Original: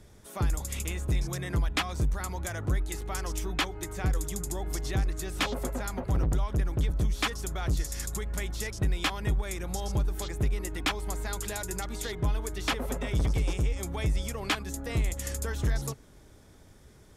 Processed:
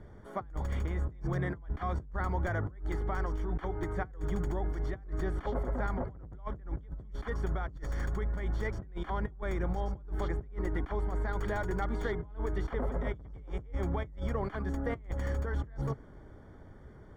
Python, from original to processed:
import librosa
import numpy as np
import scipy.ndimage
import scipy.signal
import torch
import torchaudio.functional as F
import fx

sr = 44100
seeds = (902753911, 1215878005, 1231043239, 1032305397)

y = fx.tracing_dist(x, sr, depth_ms=0.085)
y = fx.over_compress(y, sr, threshold_db=-33.0, ratio=-0.5)
y = scipy.signal.savgol_filter(y, 41, 4, mode='constant')